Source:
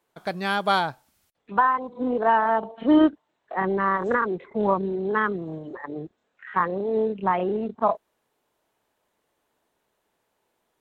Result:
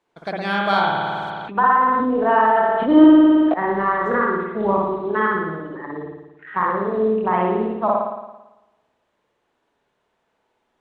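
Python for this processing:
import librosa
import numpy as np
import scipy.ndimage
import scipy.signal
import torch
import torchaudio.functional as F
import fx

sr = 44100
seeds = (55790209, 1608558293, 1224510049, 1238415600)

y = scipy.signal.sosfilt(scipy.signal.butter(2, 6400.0, 'lowpass', fs=sr, output='sos'), x)
y = fx.rev_spring(y, sr, rt60_s=1.0, pass_ms=(55,), chirp_ms=50, drr_db=-2.0)
y = fx.sustainer(y, sr, db_per_s=20.0, at=(0.89, 3.54))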